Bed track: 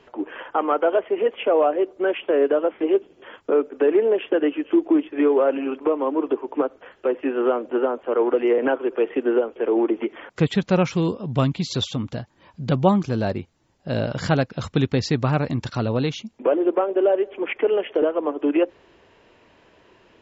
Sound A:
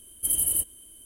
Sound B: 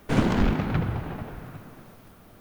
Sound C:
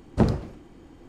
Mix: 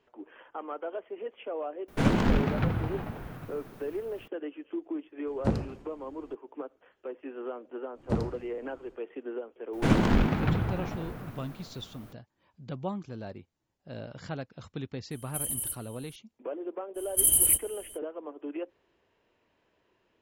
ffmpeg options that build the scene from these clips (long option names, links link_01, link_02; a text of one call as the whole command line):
ffmpeg -i bed.wav -i cue0.wav -i cue1.wav -i cue2.wav -filter_complex "[2:a]asplit=2[link_01][link_02];[3:a]asplit=2[link_03][link_04];[1:a]asplit=2[link_05][link_06];[0:a]volume=-17dB[link_07];[link_05]alimiter=limit=-18.5dB:level=0:latency=1:release=74[link_08];[link_06]acontrast=86[link_09];[link_01]atrim=end=2.4,asetpts=PTS-STARTPTS,volume=-2dB,afade=type=in:duration=0.004:curve=hsin,afade=type=out:start_time=2.396:duration=0.004:curve=hsin,adelay=1880[link_10];[link_03]atrim=end=1.08,asetpts=PTS-STARTPTS,volume=-7dB,afade=type=in:duration=0.004:curve=hsin,afade=type=out:start_time=1.076:duration=0.004:curve=hsin,adelay=5270[link_11];[link_04]atrim=end=1.08,asetpts=PTS-STARTPTS,volume=-8.5dB,afade=type=in:duration=0.1,afade=type=out:start_time=0.98:duration=0.1,adelay=7920[link_12];[link_02]atrim=end=2.4,asetpts=PTS-STARTPTS,volume=-1dB,afade=type=in:duration=0.004:curve=hsin,afade=type=out:start_time=2.396:duration=0.004:curve=hsin,adelay=9730[link_13];[link_08]atrim=end=1.05,asetpts=PTS-STARTPTS,volume=-4.5dB,afade=type=in:duration=0.004:curve=hsin,afade=type=out:start_time=1.046:duration=0.004:curve=hsin,adelay=15110[link_14];[link_09]atrim=end=1.05,asetpts=PTS-STARTPTS,volume=-4.5dB,afade=type=in:duration=0.05,afade=type=out:start_time=1:duration=0.05,adelay=16940[link_15];[link_07][link_10][link_11][link_12][link_13][link_14][link_15]amix=inputs=7:normalize=0" out.wav